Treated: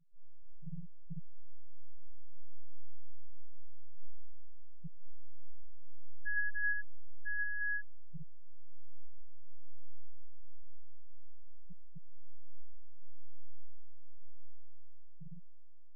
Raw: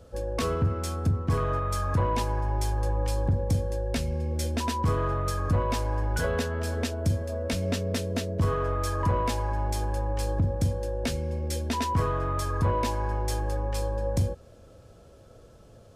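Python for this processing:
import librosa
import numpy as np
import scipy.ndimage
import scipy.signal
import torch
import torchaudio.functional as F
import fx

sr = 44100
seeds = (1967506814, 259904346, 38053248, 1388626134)

y = fx.echo_multitap(x, sr, ms=(108, 837), db=(-3.5, -11.5))
y = fx.robotise(y, sr, hz=152.0)
y = fx.dynamic_eq(y, sr, hz=1400.0, q=2.0, threshold_db=-43.0, ratio=4.0, max_db=6)
y = fx.over_compress(y, sr, threshold_db=-27.0, ratio=-0.5)
y = fx.stiff_resonator(y, sr, f0_hz=170.0, decay_s=0.65, stiffness=0.008)
y = y + 10.0 ** (-3.5 / 20.0) * np.pad(y, (int(1033 * sr / 1000.0), 0))[:len(y)]
y = fx.spec_gate(y, sr, threshold_db=-10, keep='strong')
y = F.gain(torch.from_numpy(y), 4.5).numpy()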